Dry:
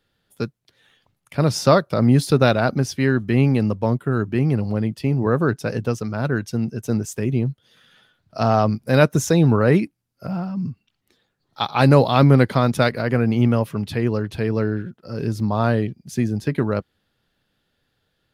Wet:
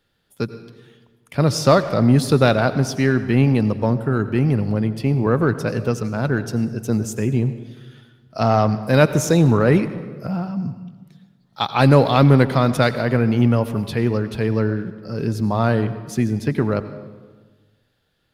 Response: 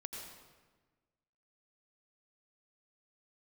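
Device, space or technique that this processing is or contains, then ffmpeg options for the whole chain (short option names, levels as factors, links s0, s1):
saturated reverb return: -filter_complex "[0:a]asplit=2[s0][s1];[1:a]atrim=start_sample=2205[s2];[s1][s2]afir=irnorm=-1:irlink=0,asoftclip=type=tanh:threshold=0.15,volume=0.631[s3];[s0][s3]amix=inputs=2:normalize=0,volume=0.891"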